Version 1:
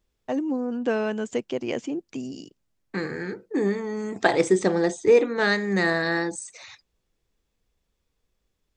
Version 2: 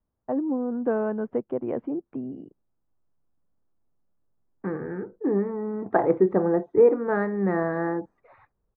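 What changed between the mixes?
second voice: entry +1.70 s; master: add low-pass 1.3 kHz 24 dB/octave

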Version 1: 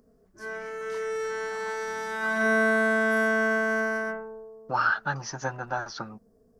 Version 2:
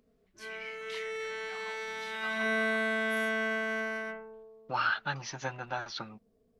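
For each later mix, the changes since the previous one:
second voice -5.5 dB; background -8.0 dB; master: add high-order bell 2.9 kHz +12 dB 1.2 oct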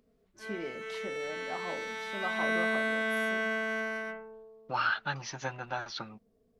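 first voice: remove resonant high-pass 2 kHz, resonance Q 2.4

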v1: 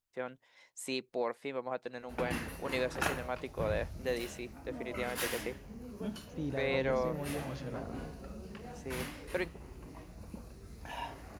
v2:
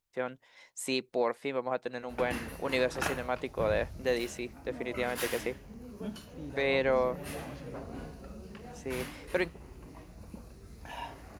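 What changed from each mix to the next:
first voice +5.0 dB; second voice -7.0 dB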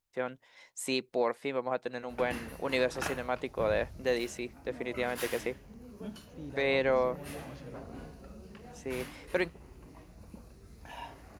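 background -3.0 dB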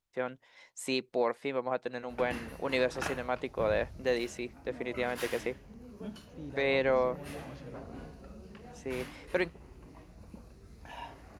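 master: add treble shelf 10 kHz -8.5 dB

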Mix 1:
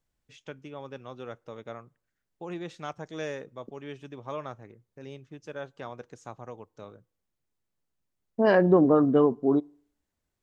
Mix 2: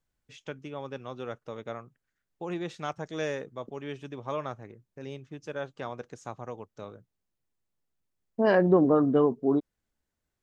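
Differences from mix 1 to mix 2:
first voice +4.0 dB; reverb: off

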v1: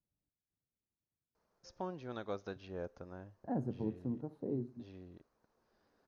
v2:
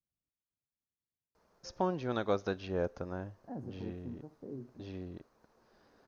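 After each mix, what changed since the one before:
first voice +9.5 dB; second voice -6.5 dB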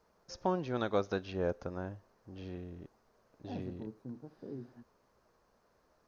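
first voice: entry -1.35 s

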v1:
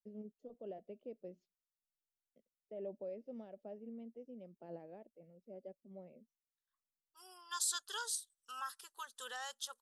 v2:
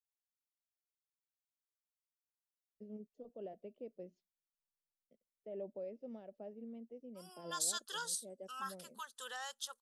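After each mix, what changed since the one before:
first voice: entry +2.75 s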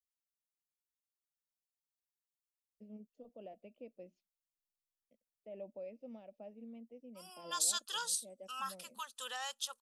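second voice +3.5 dB; master: add graphic EQ with 31 bands 160 Hz -9 dB, 400 Hz -10 dB, 1.6 kHz -6 dB, 2.5 kHz +9 dB

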